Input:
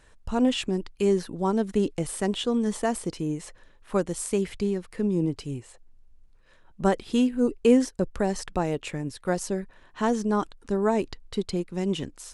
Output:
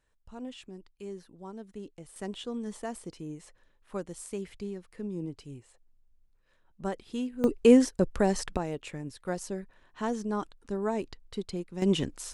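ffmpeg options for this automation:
ffmpeg -i in.wav -af "asetnsamples=nb_out_samples=441:pad=0,asendcmd='2.16 volume volume -11dB;7.44 volume volume 0.5dB;8.57 volume volume -7dB;11.82 volume volume 2dB',volume=-18.5dB" out.wav

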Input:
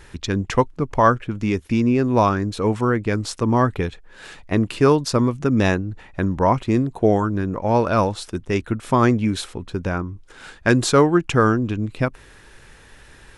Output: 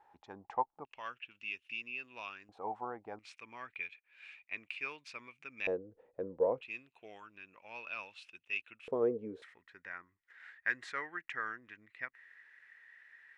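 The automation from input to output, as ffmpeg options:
ffmpeg -i in.wav -af "asetnsamples=nb_out_samples=441:pad=0,asendcmd='0.85 bandpass f 2700;2.49 bandpass f 790;3.19 bandpass f 2400;5.67 bandpass f 490;6.61 bandpass f 2600;8.88 bandpass f 460;9.42 bandpass f 1900',bandpass=frequency=820:width_type=q:width=12:csg=0" out.wav

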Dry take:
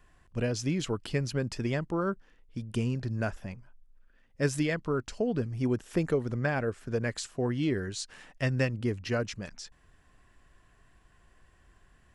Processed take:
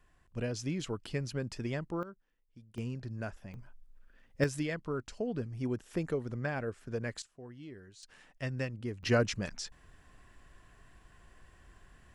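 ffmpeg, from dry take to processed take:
ffmpeg -i in.wav -af "asetnsamples=nb_out_samples=441:pad=0,asendcmd='2.03 volume volume -18dB;2.78 volume volume -8dB;3.54 volume volume 2dB;4.44 volume volume -6dB;7.22 volume volume -19dB;8.03 volume volume -8dB;9.03 volume volume 3dB',volume=-5.5dB" out.wav

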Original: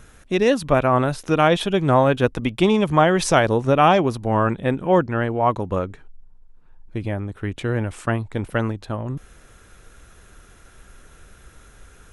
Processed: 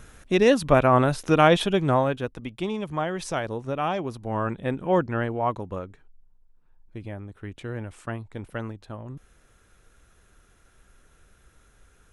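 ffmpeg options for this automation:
ffmpeg -i in.wav -af "volume=7.5dB,afade=type=out:start_time=1.55:duration=0.71:silence=0.266073,afade=type=in:start_time=3.92:duration=1.23:silence=0.398107,afade=type=out:start_time=5.15:duration=0.66:silence=0.473151" out.wav

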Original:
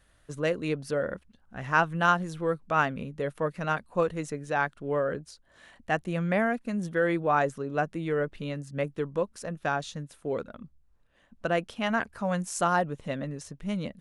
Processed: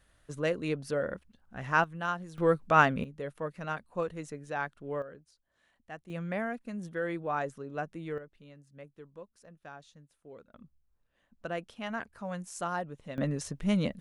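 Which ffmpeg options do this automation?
ffmpeg -i in.wav -af "asetnsamples=nb_out_samples=441:pad=0,asendcmd='1.84 volume volume -10dB;2.38 volume volume 3dB;3.04 volume volume -7dB;5.02 volume volume -17dB;6.1 volume volume -8dB;8.18 volume volume -19dB;10.54 volume volume -9dB;13.18 volume volume 4dB',volume=-2.5dB" out.wav

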